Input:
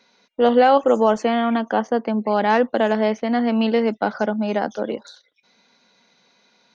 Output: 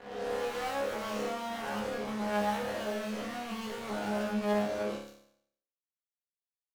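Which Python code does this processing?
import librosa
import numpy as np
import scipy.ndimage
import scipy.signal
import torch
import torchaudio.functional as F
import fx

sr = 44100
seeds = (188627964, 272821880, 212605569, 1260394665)

y = fx.spec_swells(x, sr, rise_s=1.14)
y = fx.fuzz(y, sr, gain_db=28.0, gate_db=-34.0)
y = fx.resonator_bank(y, sr, root=37, chord='fifth', decay_s=0.67)
y = y * librosa.db_to_amplitude(-6.0)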